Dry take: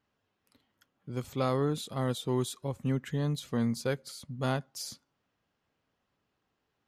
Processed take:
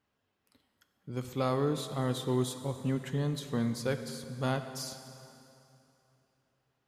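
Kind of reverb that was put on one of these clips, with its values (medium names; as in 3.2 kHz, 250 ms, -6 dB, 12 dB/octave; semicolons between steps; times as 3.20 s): plate-style reverb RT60 2.9 s, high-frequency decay 0.85×, DRR 8 dB; trim -1 dB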